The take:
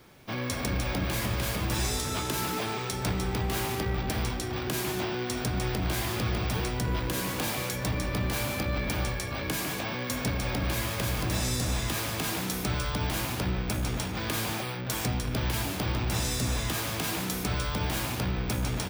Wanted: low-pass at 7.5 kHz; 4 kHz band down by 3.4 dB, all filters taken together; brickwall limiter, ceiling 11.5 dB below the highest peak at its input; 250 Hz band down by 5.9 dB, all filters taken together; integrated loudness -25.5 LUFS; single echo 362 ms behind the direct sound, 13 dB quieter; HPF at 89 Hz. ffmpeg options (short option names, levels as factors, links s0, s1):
-af "highpass=89,lowpass=7500,equalizer=f=250:t=o:g=-8.5,equalizer=f=4000:t=o:g=-4,alimiter=level_in=2.24:limit=0.0631:level=0:latency=1,volume=0.447,aecho=1:1:362:0.224,volume=5.01"